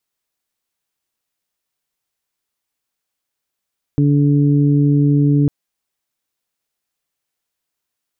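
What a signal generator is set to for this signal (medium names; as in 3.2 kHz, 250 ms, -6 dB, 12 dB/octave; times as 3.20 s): steady additive tone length 1.50 s, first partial 144 Hz, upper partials -2.5/-14.5 dB, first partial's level -12 dB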